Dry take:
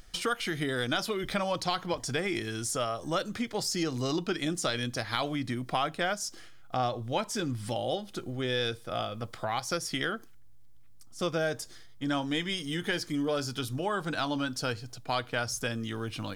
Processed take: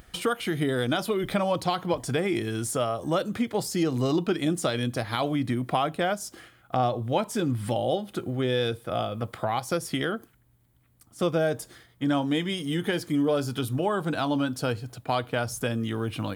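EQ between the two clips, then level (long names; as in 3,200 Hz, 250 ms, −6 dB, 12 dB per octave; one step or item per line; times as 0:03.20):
high-pass filter 54 Hz
dynamic equaliser 1,700 Hz, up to −6 dB, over −44 dBFS, Q 0.99
parametric band 5,500 Hz −11.5 dB 1.1 octaves
+6.5 dB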